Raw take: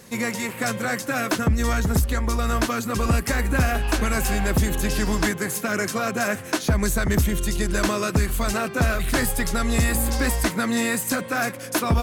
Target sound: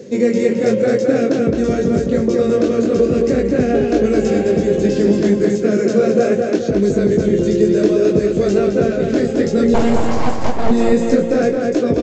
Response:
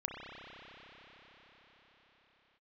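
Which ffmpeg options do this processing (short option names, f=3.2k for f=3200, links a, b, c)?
-filter_complex "[0:a]highpass=180,lowshelf=f=670:t=q:w=3:g=12.5,asplit=2[a][b];[b]alimiter=limit=-5dB:level=0:latency=1:release=36,volume=2dB[c];[a][c]amix=inputs=2:normalize=0,dynaudnorm=f=100:g=3:m=11.5dB,flanger=delay=20:depth=3.3:speed=0.59,asettb=1/sr,asplit=3[d][e][f];[d]atrim=end=9.744[g];[e]atrim=start=9.74:end=10.71,asetpts=PTS-STARTPTS,afade=t=in:d=0.004:c=qsin,afade=t=out:st=0.966:d=0.004:c=qsin,aeval=exprs='abs(val(0))':c=same[h];[f]atrim=start=10.706[i];[g][h]acrossfade=d=0.004:c1=hsin:c2=qsin[j];[j][i]acrossfade=d=0.004:c1=qsin:c2=hsin,asplit=2[k][l];[l]adelay=215,lowpass=f=3.8k:p=1,volume=-3dB,asplit=2[m][n];[n]adelay=215,lowpass=f=3.8k:p=1,volume=0.46,asplit=2[o][p];[p]adelay=215,lowpass=f=3.8k:p=1,volume=0.46,asplit=2[q][r];[r]adelay=215,lowpass=f=3.8k:p=1,volume=0.46,asplit=2[s][t];[t]adelay=215,lowpass=f=3.8k:p=1,volume=0.46,asplit=2[u][v];[v]adelay=215,lowpass=f=3.8k:p=1,volume=0.46[w];[m][o][q][s][u][w]amix=inputs=6:normalize=0[x];[k][x]amix=inputs=2:normalize=0,aresample=16000,aresample=44100,volume=-2dB"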